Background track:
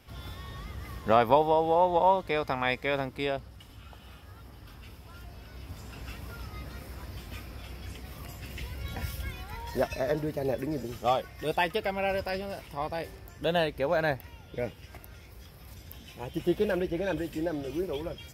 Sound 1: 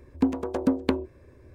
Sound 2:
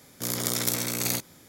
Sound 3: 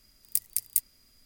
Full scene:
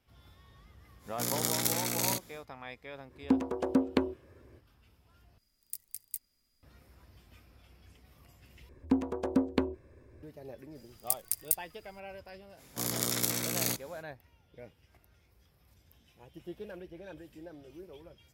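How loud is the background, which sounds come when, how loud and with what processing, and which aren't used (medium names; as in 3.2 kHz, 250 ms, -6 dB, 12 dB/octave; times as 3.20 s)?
background track -16.5 dB
0.98 s: add 2 -3.5 dB, fades 0.10 s
3.08 s: add 1 -3 dB, fades 0.05 s + high-pass 110 Hz 6 dB/octave
5.38 s: replace with 3 -13.5 dB
8.69 s: replace with 1 -4.5 dB
10.75 s: add 3 -3 dB + block-companded coder 7-bit
12.56 s: add 2 -4 dB, fades 0.05 s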